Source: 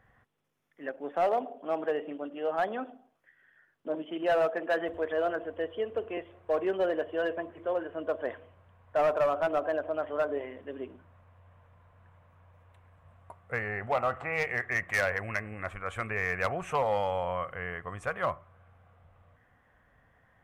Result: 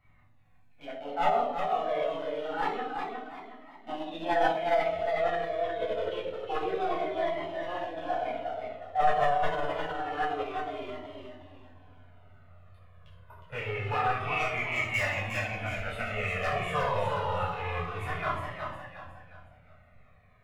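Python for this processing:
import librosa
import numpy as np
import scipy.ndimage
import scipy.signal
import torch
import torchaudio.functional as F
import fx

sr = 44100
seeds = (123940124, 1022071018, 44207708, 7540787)

y = fx.rattle_buzz(x, sr, strikes_db=-51.0, level_db=-38.0)
y = fx.notch(y, sr, hz=1600.0, q=17.0)
y = fx.comb_fb(y, sr, f0_hz=630.0, decay_s=0.52, harmonics='all', damping=0.0, mix_pct=60)
y = fx.echo_feedback(y, sr, ms=361, feedback_pct=37, wet_db=-5)
y = fx.room_shoebox(y, sr, seeds[0], volume_m3=920.0, walls='furnished', distance_m=7.2)
y = fx.formant_shift(y, sr, semitones=3)
y = fx.comb_cascade(y, sr, direction='falling', hz=0.27)
y = y * 10.0 ** (2.5 / 20.0)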